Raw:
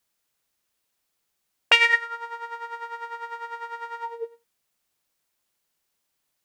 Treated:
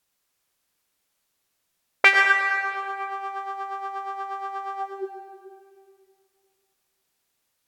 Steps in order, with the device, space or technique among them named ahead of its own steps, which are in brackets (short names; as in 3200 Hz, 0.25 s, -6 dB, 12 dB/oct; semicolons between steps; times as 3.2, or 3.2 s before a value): slowed and reverbed (varispeed -16%; reverb RT60 2.1 s, pre-delay 83 ms, DRR 5.5 dB); gain +1 dB